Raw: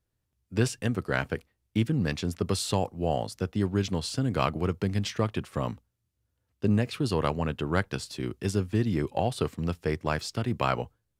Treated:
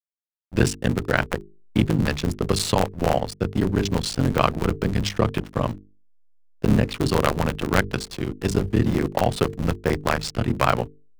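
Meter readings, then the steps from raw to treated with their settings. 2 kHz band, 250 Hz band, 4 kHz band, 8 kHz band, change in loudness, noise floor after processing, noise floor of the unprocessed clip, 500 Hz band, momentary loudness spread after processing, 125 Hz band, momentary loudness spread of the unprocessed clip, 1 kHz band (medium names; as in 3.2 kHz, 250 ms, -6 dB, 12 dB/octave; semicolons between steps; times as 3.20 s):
+7.5 dB, +5.5 dB, +6.5 dB, +6.0 dB, +6.0 dB, -54 dBFS, -80 dBFS, +6.0 dB, 6 LU, +5.0 dB, 6 LU, +7.0 dB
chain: cycle switcher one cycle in 3, muted; hysteresis with a dead band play -39.5 dBFS; hum notches 50/100/150/200/250/300/350/400/450 Hz; trim +8.5 dB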